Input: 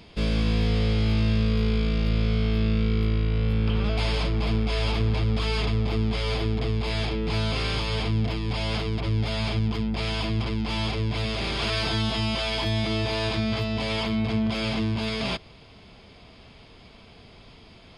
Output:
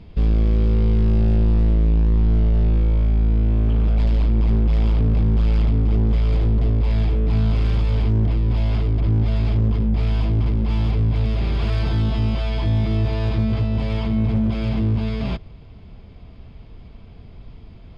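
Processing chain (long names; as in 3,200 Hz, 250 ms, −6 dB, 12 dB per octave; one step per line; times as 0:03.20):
RIAA equalisation playback
gain into a clipping stage and back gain 11 dB
level −3 dB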